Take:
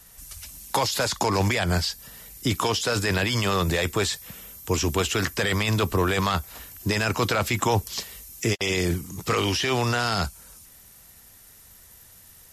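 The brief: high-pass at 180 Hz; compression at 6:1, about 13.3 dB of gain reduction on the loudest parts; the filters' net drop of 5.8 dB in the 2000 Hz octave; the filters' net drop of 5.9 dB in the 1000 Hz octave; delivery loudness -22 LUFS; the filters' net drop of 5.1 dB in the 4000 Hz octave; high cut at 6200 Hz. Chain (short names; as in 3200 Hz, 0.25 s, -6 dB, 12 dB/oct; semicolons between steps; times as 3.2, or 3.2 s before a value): HPF 180 Hz; LPF 6200 Hz; bell 1000 Hz -6 dB; bell 2000 Hz -4.5 dB; bell 4000 Hz -4 dB; compressor 6:1, threshold -37 dBFS; gain +18.5 dB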